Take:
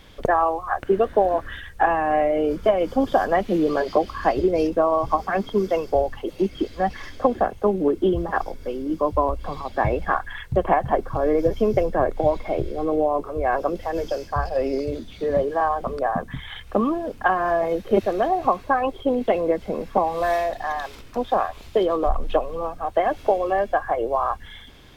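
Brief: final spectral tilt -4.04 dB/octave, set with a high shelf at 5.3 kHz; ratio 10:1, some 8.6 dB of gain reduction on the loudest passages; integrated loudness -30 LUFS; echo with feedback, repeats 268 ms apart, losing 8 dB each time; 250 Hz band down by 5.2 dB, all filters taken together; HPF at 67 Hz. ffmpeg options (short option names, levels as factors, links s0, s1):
-af "highpass=67,equalizer=f=250:t=o:g=-7.5,highshelf=f=5300:g=3.5,acompressor=threshold=0.0708:ratio=10,aecho=1:1:268|536|804|1072|1340:0.398|0.159|0.0637|0.0255|0.0102,volume=0.891"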